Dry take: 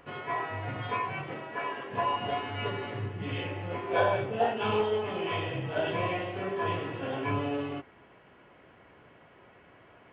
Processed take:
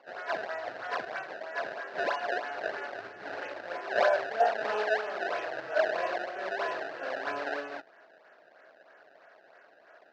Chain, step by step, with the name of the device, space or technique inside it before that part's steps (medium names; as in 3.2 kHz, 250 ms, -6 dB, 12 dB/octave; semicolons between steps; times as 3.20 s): high-pass 89 Hz; circuit-bent sampling toy (decimation with a swept rate 23×, swing 160% 3.1 Hz; cabinet simulation 590–4200 Hz, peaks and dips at 640 Hz +9 dB, 1 kHz -5 dB, 1.6 kHz +10 dB, 2.2 kHz -4 dB, 3.3 kHz -8 dB)